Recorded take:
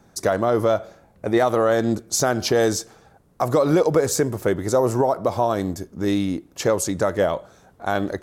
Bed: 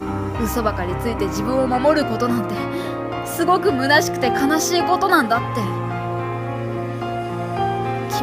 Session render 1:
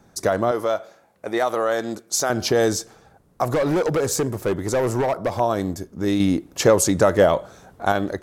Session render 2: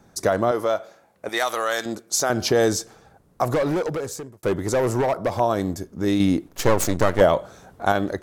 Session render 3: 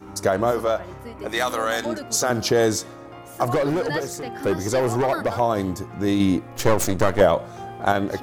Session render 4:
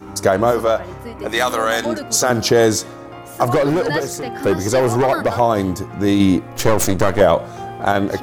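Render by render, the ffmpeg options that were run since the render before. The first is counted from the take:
-filter_complex "[0:a]asettb=1/sr,asplit=3[a][b][c];[a]atrim=end=0.514[d];[b]atrim=start=0.51:end=2.3,asetpts=PTS-STARTPTS,afade=t=in:d=0.004:c=qsin,afade=t=out:st=1.786:d=0.004:c=qsin,highpass=f=580:p=1[e];[c]atrim=start=2.296[f];[d][e]acrossfade=d=0.004:c1=hsin:c2=qsin[g];[g][f]acrossfade=d=0.004:c1=qsin:c2=hsin,asettb=1/sr,asplit=3[h][i][j];[h]atrim=end=3.444[k];[i]atrim=start=3.44:end=5.4,asetpts=PTS-STARTPTS,afade=t=in:d=0.004:c=qsin,afade=t=out:st=1.956:d=0.004:c=qsin,asoftclip=type=hard:threshold=-17dB[l];[j]atrim=start=5.396[m];[k][l]acrossfade=d=0.004:c1=hsin:c2=qsin[n];[n][m]acrossfade=d=0.004:c1=qsin:c2=hsin,asettb=1/sr,asplit=3[o][p][q];[o]atrim=end=6.204[r];[p]atrim=start=6.2:end=7.92,asetpts=PTS-STARTPTS,afade=t=in:d=0.004:c=qsin,afade=t=out:st=1.716:d=0.004:c=qsin,acontrast=32[s];[q]atrim=start=7.916[t];[r][s]acrossfade=d=0.004:c1=hsin:c2=qsin[u];[u][t]acrossfade=d=0.004:c1=qsin:c2=hsin"
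-filter_complex "[0:a]asettb=1/sr,asplit=3[a][b][c];[a]atrim=end=1.294[d];[b]atrim=start=1.29:end=1.86,asetpts=PTS-STARTPTS,afade=t=in:d=0.004:c=qsin,afade=t=out:st=0.566:d=0.004:c=qsin,tiltshelf=f=1.1k:g=-9[e];[c]atrim=start=1.856[f];[d][e]acrossfade=d=0.004:c1=hsin:c2=qsin[g];[g][f]acrossfade=d=0.004:c1=qsin:c2=hsin,asettb=1/sr,asplit=3[h][i][j];[h]atrim=end=6.484[k];[i]atrim=start=6.48:end=7.21,asetpts=PTS-STARTPTS,afade=t=in:d=0.004:c=qsin,afade=t=out:st=0.726:d=0.004:c=qsin,aeval=exprs='max(val(0),0)':c=same[l];[j]atrim=start=7.206[m];[k][l]acrossfade=d=0.004:c1=hsin:c2=qsin[n];[n][m]acrossfade=d=0.004:c1=qsin:c2=hsin,asplit=2[o][p];[o]atrim=end=4.43,asetpts=PTS-STARTPTS,afade=t=out:st=3.51:d=0.92[q];[p]atrim=start=4.43,asetpts=PTS-STARTPTS,afade=t=in:d=0.004:c=hsin[r];[q][r]concat=n=2:v=0:a=1"
-filter_complex "[1:a]volume=-15dB[a];[0:a][a]amix=inputs=2:normalize=0"
-af "volume=5.5dB,alimiter=limit=-2dB:level=0:latency=1"

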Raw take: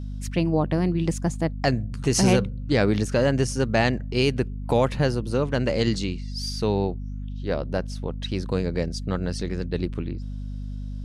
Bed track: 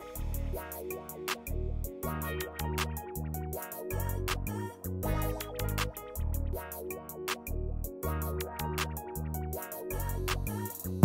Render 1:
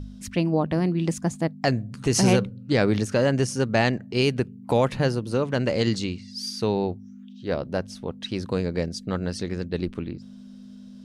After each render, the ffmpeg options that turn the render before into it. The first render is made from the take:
-af "bandreject=f=50:t=h:w=4,bandreject=f=100:t=h:w=4,bandreject=f=150:t=h:w=4"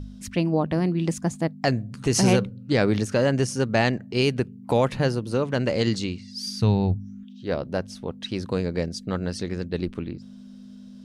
-filter_complex "[0:a]asplit=3[a][b][c];[a]afade=t=out:st=6.46:d=0.02[d];[b]asubboost=boost=7.5:cutoff=130,afade=t=in:st=6.46:d=0.02,afade=t=out:st=7.23:d=0.02[e];[c]afade=t=in:st=7.23:d=0.02[f];[d][e][f]amix=inputs=3:normalize=0"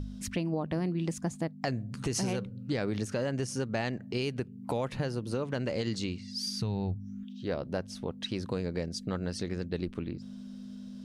-af "alimiter=limit=-14.5dB:level=0:latency=1:release=170,acompressor=threshold=-34dB:ratio=2"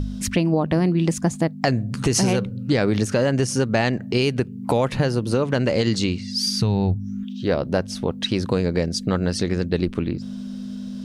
-af "volume=12dB"

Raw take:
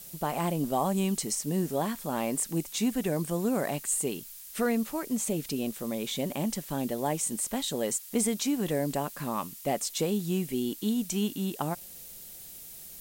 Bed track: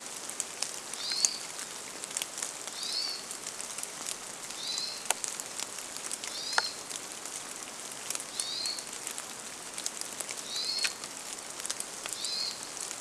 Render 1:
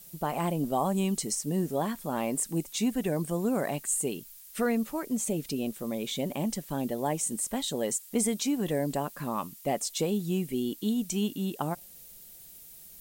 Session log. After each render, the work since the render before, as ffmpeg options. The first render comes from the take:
-af "afftdn=nr=6:nf=-46"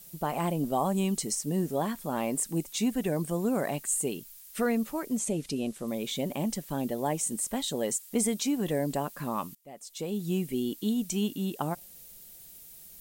-filter_complex "[0:a]asettb=1/sr,asplit=3[a][b][c];[a]atrim=end=5.194[d];[b]atrim=start=5.19:end=5.88,asetpts=PTS-STARTPTS,afade=t=in:d=0.004:c=qsin,afade=t=out:st=0.686:d=0.004:c=qsin,lowpass=f=11k:w=0.5412,lowpass=f=11k:w=1.3066[e];[c]atrim=start=5.876[f];[d][e]acrossfade=d=0.004:c1=hsin:c2=qsin[g];[g][f]acrossfade=d=0.004:c1=qsin:c2=hsin,asplit=2[h][i];[h]atrim=end=9.55,asetpts=PTS-STARTPTS,afade=t=out:st=9.546:d=0.004:c=hsin:silence=0.0841395[j];[i]atrim=start=9.55,asetpts=PTS-STARTPTS,afade=t=in:d=0.74:c=qua:silence=0.0841395[k];[j][k]concat=n=2:v=0:a=1"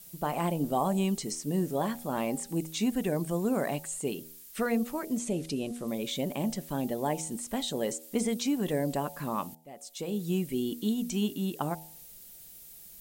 -filter_complex "[0:a]bandreject=f=79.86:t=h:w=4,bandreject=f=159.72:t=h:w=4,bandreject=f=239.58:t=h:w=4,bandreject=f=319.44:t=h:w=4,bandreject=f=399.3:t=h:w=4,bandreject=f=479.16:t=h:w=4,bandreject=f=559.02:t=h:w=4,bandreject=f=638.88:t=h:w=4,bandreject=f=718.74:t=h:w=4,bandreject=f=798.6:t=h:w=4,bandreject=f=878.46:t=h:w=4,acrossover=split=6100[a][b];[b]acompressor=threshold=-41dB:ratio=4:attack=1:release=60[c];[a][c]amix=inputs=2:normalize=0"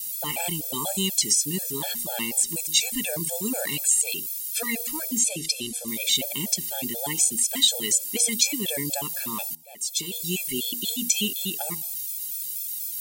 -af "aexciter=amount=5.5:drive=7.5:freq=2k,afftfilt=real='re*gt(sin(2*PI*4.1*pts/sr)*(1-2*mod(floor(b*sr/1024/450),2)),0)':imag='im*gt(sin(2*PI*4.1*pts/sr)*(1-2*mod(floor(b*sr/1024/450),2)),0)':win_size=1024:overlap=0.75"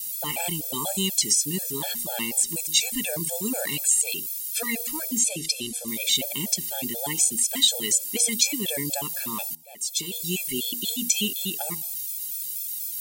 -af anull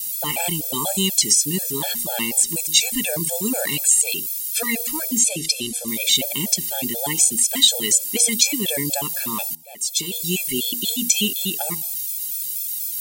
-af "volume=5dB,alimiter=limit=-1dB:level=0:latency=1"

